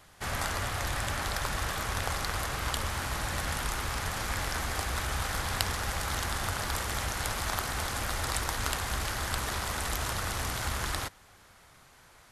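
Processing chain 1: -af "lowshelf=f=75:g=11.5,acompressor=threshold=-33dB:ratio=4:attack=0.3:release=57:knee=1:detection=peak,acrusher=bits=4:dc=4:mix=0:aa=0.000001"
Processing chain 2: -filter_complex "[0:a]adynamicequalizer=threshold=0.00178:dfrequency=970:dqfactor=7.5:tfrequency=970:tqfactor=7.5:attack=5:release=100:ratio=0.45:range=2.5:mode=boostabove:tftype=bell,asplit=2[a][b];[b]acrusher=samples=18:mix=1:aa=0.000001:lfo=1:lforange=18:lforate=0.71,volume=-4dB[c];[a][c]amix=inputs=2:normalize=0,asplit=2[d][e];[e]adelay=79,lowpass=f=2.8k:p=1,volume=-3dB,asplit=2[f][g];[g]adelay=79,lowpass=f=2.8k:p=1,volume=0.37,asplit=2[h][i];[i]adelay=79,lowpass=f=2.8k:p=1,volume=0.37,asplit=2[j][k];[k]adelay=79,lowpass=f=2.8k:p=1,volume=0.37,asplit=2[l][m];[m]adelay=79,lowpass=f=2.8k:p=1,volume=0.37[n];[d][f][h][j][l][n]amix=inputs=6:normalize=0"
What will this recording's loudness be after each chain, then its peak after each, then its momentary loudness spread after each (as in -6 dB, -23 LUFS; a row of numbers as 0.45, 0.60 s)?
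-41.0, -28.0 LUFS; -26.0, -3.0 dBFS; 1, 2 LU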